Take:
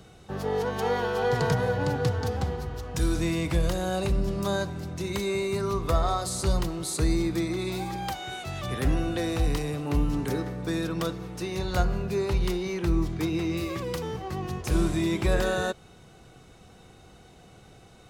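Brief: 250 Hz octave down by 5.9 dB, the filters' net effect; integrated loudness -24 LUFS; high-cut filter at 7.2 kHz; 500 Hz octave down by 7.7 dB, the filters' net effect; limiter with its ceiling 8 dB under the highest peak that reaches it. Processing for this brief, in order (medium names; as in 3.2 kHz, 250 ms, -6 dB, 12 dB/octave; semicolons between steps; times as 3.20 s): low-pass 7.2 kHz; peaking EQ 250 Hz -6.5 dB; peaking EQ 500 Hz -7.5 dB; trim +9 dB; peak limiter -11.5 dBFS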